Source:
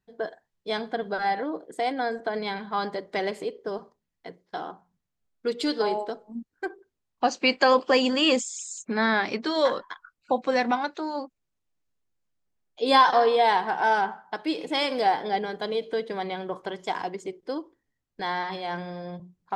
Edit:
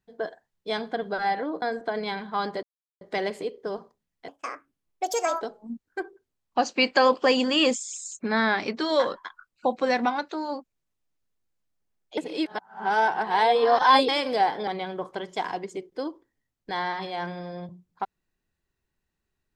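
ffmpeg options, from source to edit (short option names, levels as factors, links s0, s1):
-filter_complex "[0:a]asplit=8[s0][s1][s2][s3][s4][s5][s6][s7];[s0]atrim=end=1.622[s8];[s1]atrim=start=2.008:end=3.02,asetpts=PTS-STARTPTS,afade=t=out:st=1.008:d=0.004:c=hsin,apad=pad_dur=0.38[s9];[s2]atrim=start=3.02:end=4.294,asetpts=PTS-STARTPTS,afade=t=in:d=0.004:c=hsin[s10];[s3]atrim=start=4.29:end=6.07,asetpts=PTS-STARTPTS,asetrate=69237,aresample=44100[s11];[s4]atrim=start=6.066:end=12.832[s12];[s5]atrim=start=12.828:end=14.742,asetpts=PTS-STARTPTS,areverse[s13];[s6]atrim=start=14.738:end=15.332[s14];[s7]atrim=start=16.178[s15];[s9][s10]concat=n=2:v=0:a=1[s16];[s8][s16]acrossfade=d=0.004:c1=hsin:c2=hsin[s17];[s17][s11]acrossfade=d=0.004:c1=hsin:c2=hsin[s18];[s18][s12]acrossfade=d=0.004:c1=hsin:c2=hsin[s19];[s19][s13]acrossfade=d=0.004:c1=hsin:c2=hsin[s20];[s20][s14]acrossfade=d=0.004:c1=hsin:c2=hsin[s21];[s21][s15]acrossfade=d=0.004:c1=hsin:c2=hsin"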